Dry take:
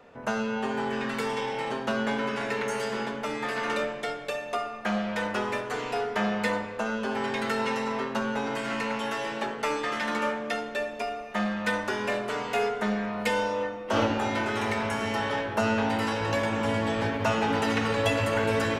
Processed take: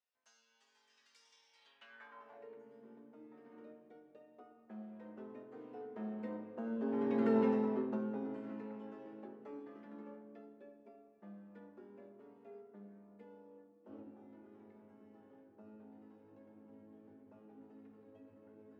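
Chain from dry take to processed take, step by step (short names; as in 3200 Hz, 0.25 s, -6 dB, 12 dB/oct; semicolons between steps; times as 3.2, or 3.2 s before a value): Doppler pass-by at 7.37, 11 m/s, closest 2.7 m; band-pass sweep 5600 Hz -> 290 Hz, 1.52–2.66; gain +7 dB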